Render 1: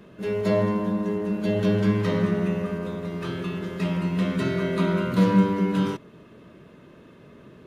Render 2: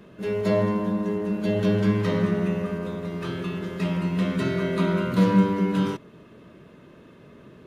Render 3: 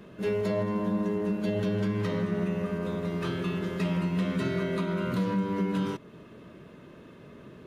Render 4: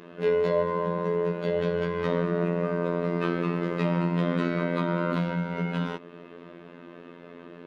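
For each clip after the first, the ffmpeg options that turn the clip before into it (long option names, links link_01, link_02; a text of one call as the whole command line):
ffmpeg -i in.wav -af anull out.wav
ffmpeg -i in.wav -af "alimiter=limit=-20dB:level=0:latency=1:release=311" out.wav
ffmpeg -i in.wav -filter_complex "[0:a]acrossover=split=190 4100:gain=0.112 1 0.126[link_01][link_02][link_03];[link_01][link_02][link_03]amix=inputs=3:normalize=0,afftfilt=real='hypot(re,im)*cos(PI*b)':imag='0':win_size=2048:overlap=0.75,volume=8.5dB" out.wav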